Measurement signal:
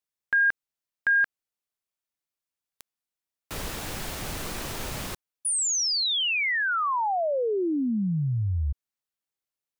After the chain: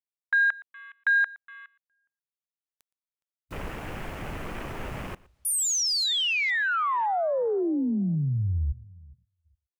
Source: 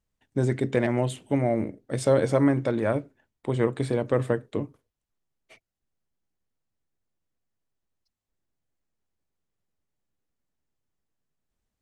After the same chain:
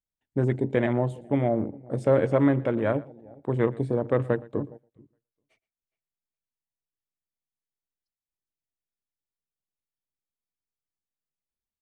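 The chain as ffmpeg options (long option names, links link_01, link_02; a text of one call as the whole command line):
ffmpeg -i in.wav -filter_complex "[0:a]asplit=2[link_01][link_02];[link_02]adelay=415,lowpass=frequency=4700:poles=1,volume=-22dB,asplit=2[link_03][link_04];[link_04]adelay=415,lowpass=frequency=4700:poles=1,volume=0.19[link_05];[link_03][link_05]amix=inputs=2:normalize=0[link_06];[link_01][link_06]amix=inputs=2:normalize=0,afwtdn=0.0112,asplit=2[link_07][link_08];[link_08]aecho=0:1:117:0.0794[link_09];[link_07][link_09]amix=inputs=2:normalize=0" out.wav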